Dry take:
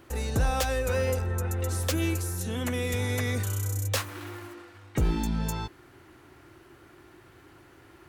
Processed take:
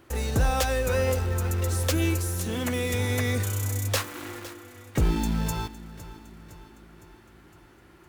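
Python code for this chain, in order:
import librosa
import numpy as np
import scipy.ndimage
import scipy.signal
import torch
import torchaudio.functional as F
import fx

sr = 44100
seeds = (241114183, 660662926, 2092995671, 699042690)

p1 = fx.quant_dither(x, sr, seeds[0], bits=6, dither='none')
p2 = x + F.gain(torch.from_numpy(p1), -5.5).numpy()
p3 = fx.echo_feedback(p2, sr, ms=510, feedback_pct=57, wet_db=-16.5)
y = F.gain(torch.from_numpy(p3), -1.5).numpy()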